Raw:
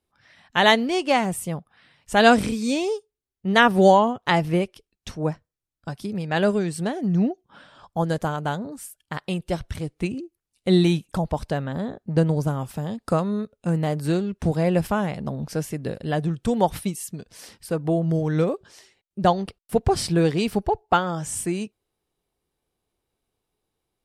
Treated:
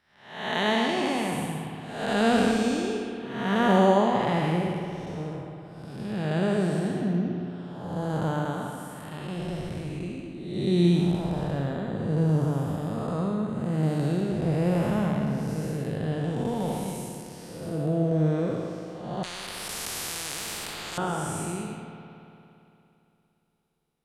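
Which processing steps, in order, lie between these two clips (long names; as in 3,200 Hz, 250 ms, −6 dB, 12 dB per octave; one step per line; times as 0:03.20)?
spectrum smeared in time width 371 ms
spring reverb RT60 2.9 s, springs 57 ms, chirp 60 ms, DRR 4 dB
0:19.23–0:20.98: every bin compressed towards the loudest bin 10 to 1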